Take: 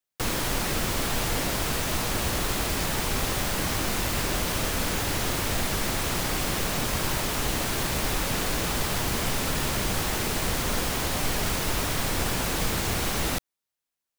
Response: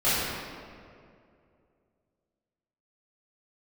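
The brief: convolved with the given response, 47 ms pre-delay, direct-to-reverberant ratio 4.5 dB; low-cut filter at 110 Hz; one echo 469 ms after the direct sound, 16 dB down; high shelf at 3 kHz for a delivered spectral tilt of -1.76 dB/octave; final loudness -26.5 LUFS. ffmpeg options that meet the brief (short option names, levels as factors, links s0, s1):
-filter_complex "[0:a]highpass=110,highshelf=f=3000:g=8,aecho=1:1:469:0.158,asplit=2[s0][s1];[1:a]atrim=start_sample=2205,adelay=47[s2];[s1][s2]afir=irnorm=-1:irlink=0,volume=0.0944[s3];[s0][s3]amix=inputs=2:normalize=0,volume=0.531"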